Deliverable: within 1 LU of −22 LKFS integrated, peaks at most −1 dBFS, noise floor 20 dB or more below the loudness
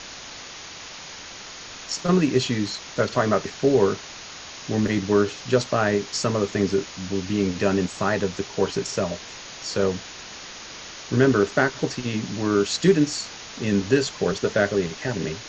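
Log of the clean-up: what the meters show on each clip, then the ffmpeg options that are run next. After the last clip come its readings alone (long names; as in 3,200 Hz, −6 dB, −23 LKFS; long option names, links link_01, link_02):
background noise floor −40 dBFS; target noise floor −44 dBFS; integrated loudness −23.5 LKFS; sample peak −5.0 dBFS; target loudness −22.0 LKFS
→ -af "afftdn=noise_reduction=6:noise_floor=-40"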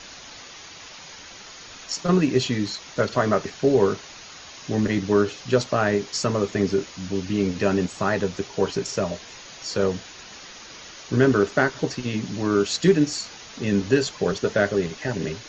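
background noise floor −43 dBFS; target noise floor −44 dBFS
→ -af "afftdn=noise_reduction=6:noise_floor=-43"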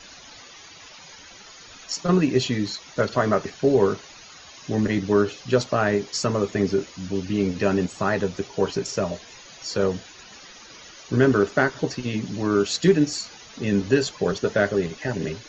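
background noise floor −46 dBFS; integrated loudness −23.5 LKFS; sample peak −5.0 dBFS; target loudness −22.0 LKFS
→ -af "volume=1.5dB"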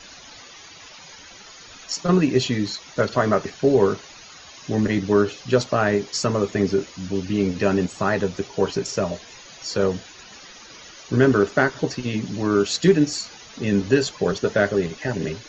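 integrated loudness −22.0 LKFS; sample peak −3.5 dBFS; background noise floor −44 dBFS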